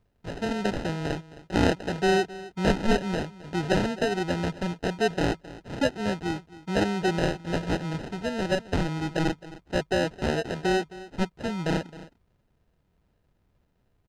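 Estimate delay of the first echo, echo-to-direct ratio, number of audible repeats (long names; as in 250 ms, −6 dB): 265 ms, −17.5 dB, 1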